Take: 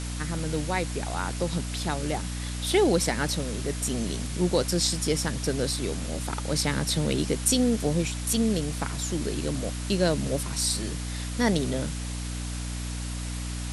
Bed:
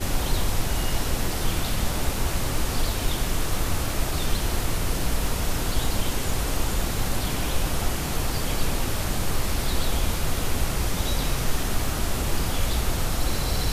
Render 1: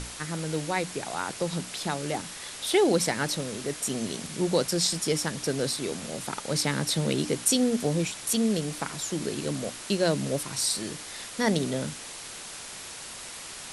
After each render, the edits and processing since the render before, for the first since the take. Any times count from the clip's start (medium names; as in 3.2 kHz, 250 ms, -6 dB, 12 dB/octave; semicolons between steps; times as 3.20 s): hum notches 60/120/180/240/300 Hz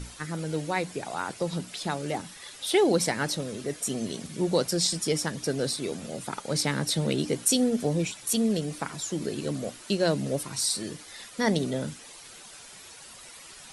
noise reduction 10 dB, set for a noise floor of -41 dBFS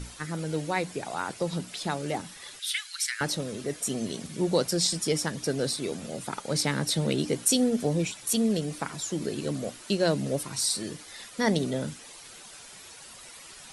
2.59–3.21 s: steep high-pass 1.4 kHz 48 dB/octave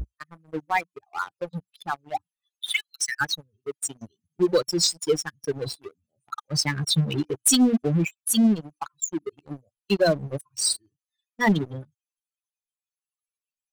expander on every frequency bin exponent 3; waveshaping leveller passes 3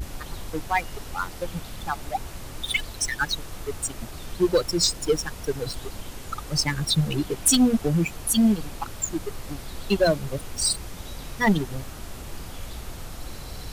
add bed -12 dB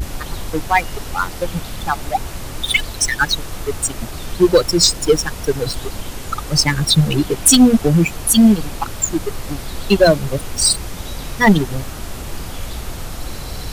trim +9 dB; peak limiter -2 dBFS, peak gain reduction 1 dB